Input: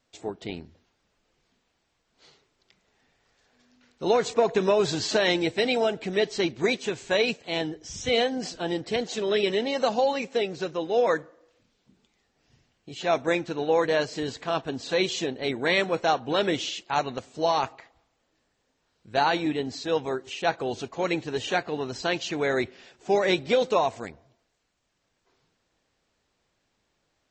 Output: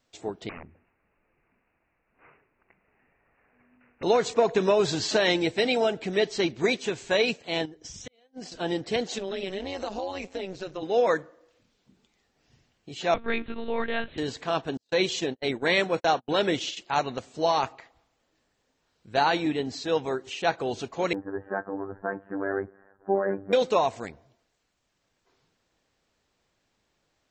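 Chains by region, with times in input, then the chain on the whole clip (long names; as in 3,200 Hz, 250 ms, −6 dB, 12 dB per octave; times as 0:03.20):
0:00.49–0:04.03: wrap-around overflow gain 35 dB + bad sample-rate conversion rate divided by 8×, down none, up filtered
0:07.65–0:08.52: gate with flip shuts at −20 dBFS, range −35 dB + downward compressor 4 to 1, threshold −41 dBFS + transient designer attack +8 dB, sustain −7 dB
0:09.18–0:10.83: amplitude modulation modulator 190 Hz, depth 65% + downward compressor 2.5 to 1, threshold −30 dBFS
0:13.14–0:14.18: flat-topped bell 590 Hz −8 dB 1.2 octaves + one-pitch LPC vocoder at 8 kHz 230 Hz
0:14.77–0:16.77: notch filter 1,200 Hz, Q 27 + noise gate −34 dBFS, range −42 dB
0:21.13–0:23.53: Chebyshev low-pass filter 1,700 Hz, order 6 + phases set to zero 98 Hz + double-tracking delay 14 ms −14 dB
whole clip: no processing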